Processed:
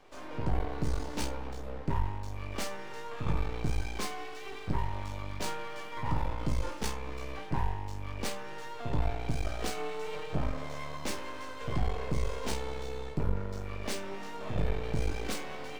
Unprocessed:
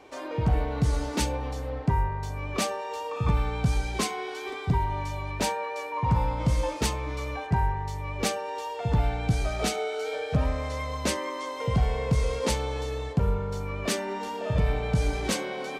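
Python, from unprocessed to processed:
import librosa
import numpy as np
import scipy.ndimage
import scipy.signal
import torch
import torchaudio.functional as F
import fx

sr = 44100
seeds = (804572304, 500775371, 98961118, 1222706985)

y = scipy.signal.medfilt(x, 3)
y = np.maximum(y, 0.0)
y = fx.room_early_taps(y, sr, ms=(20, 50), db=(-6.0, -11.5))
y = F.gain(torch.from_numpy(y), -4.5).numpy()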